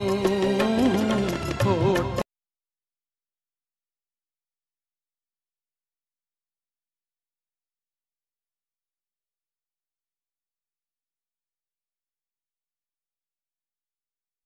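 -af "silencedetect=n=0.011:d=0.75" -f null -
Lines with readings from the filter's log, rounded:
silence_start: 2.22
silence_end: 14.46 | silence_duration: 12.24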